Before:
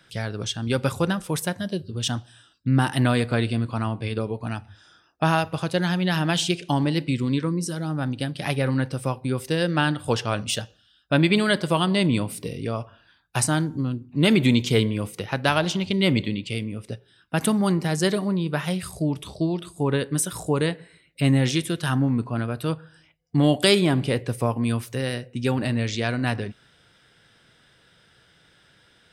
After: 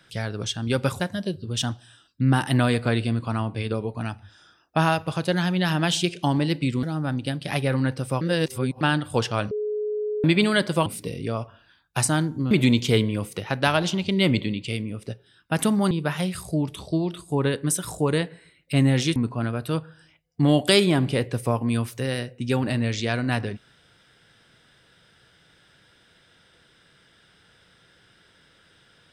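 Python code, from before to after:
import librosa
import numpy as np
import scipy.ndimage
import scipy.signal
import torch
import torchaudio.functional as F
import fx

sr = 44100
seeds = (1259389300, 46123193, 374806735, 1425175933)

y = fx.edit(x, sr, fx.cut(start_s=1.0, length_s=0.46),
    fx.cut(start_s=7.29, length_s=0.48),
    fx.reverse_span(start_s=9.15, length_s=0.6),
    fx.bleep(start_s=10.45, length_s=0.73, hz=422.0, db=-24.0),
    fx.cut(start_s=11.8, length_s=0.45),
    fx.cut(start_s=13.9, length_s=0.43),
    fx.cut(start_s=17.73, length_s=0.66),
    fx.cut(start_s=21.64, length_s=0.47), tone=tone)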